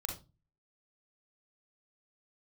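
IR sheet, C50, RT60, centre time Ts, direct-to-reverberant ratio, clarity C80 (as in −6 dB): 6.5 dB, 0.25 s, 24 ms, 1.5 dB, 14.5 dB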